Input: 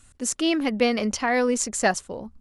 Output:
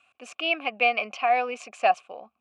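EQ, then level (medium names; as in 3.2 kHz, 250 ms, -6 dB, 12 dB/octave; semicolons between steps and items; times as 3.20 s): vowel filter a; high-pass 91 Hz; peaking EQ 2.4 kHz +15 dB 1.3 oct; +4.5 dB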